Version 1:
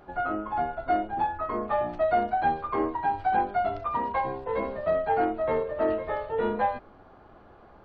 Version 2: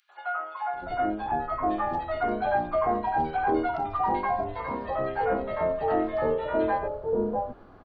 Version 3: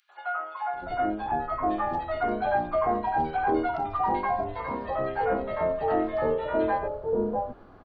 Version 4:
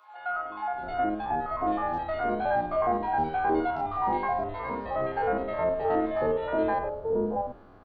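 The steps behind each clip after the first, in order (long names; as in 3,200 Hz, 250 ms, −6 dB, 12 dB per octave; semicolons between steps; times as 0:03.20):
three-band delay without the direct sound highs, mids, lows 90/740 ms, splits 740/2,400 Hz; level +2.5 dB
no processing that can be heard
spectrum averaged block by block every 50 ms; backwards echo 539 ms −18 dB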